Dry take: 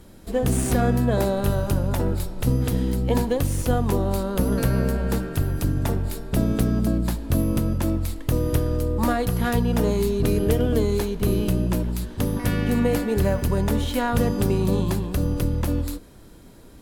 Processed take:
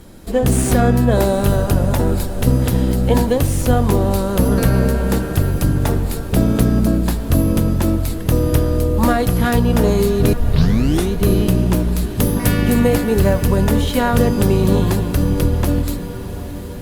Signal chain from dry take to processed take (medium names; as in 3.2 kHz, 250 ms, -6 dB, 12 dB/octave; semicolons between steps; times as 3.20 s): 10.33 s: tape start 0.79 s; 12.04–12.89 s: treble shelf 7.2 kHz +8 dB; echo that smears into a reverb 772 ms, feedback 65%, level -13.5 dB; trim +6.5 dB; Opus 48 kbps 48 kHz